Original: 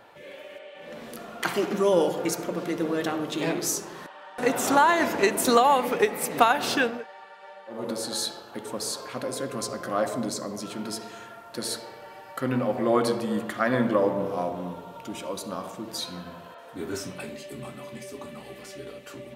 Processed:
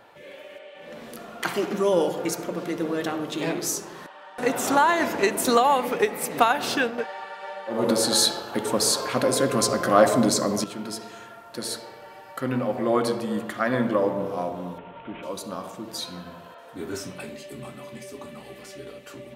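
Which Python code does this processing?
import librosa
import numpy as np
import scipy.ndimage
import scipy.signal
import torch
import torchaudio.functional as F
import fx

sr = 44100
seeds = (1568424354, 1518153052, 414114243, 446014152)

y = fx.cvsd(x, sr, bps=16000, at=(14.78, 15.23))
y = fx.edit(y, sr, fx.clip_gain(start_s=6.98, length_s=3.66, db=9.5), tone=tone)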